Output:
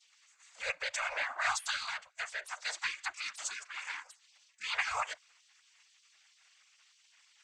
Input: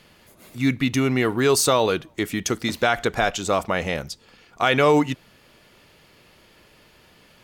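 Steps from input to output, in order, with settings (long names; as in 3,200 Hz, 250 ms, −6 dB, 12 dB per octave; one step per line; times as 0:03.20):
channel vocoder with a chord as carrier minor triad, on G#3
parametric band 3,400 Hz −12 dB 1.6 octaves
random phases in short frames
gate on every frequency bin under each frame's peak −25 dB weak
spectral tilt +4 dB per octave
level +6 dB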